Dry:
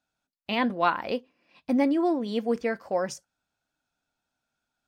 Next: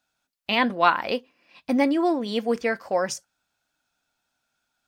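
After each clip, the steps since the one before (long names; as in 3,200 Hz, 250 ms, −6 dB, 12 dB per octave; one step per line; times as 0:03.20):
tilt shelving filter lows −3.5 dB, about 740 Hz
level +4 dB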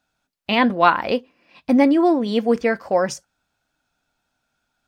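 spectral tilt −1.5 dB per octave
level +4 dB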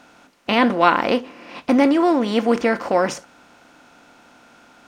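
compressor on every frequency bin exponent 0.6
level −2 dB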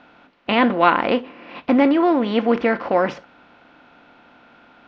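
low-pass filter 3,700 Hz 24 dB per octave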